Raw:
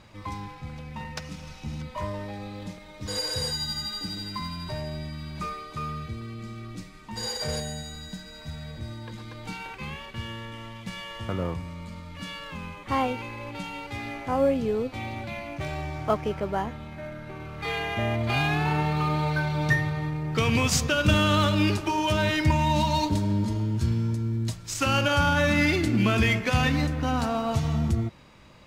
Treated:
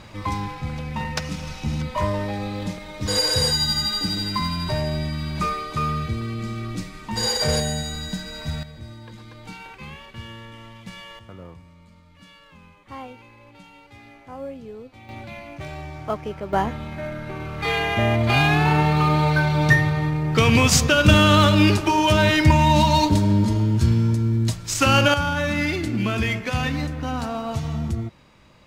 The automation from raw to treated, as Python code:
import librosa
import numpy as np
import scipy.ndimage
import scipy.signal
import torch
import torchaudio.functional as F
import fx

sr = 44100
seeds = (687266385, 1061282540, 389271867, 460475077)

y = fx.gain(x, sr, db=fx.steps((0.0, 9.0), (8.63, -2.0), (11.19, -11.5), (15.09, -2.0), (16.53, 7.0), (25.14, -1.0)))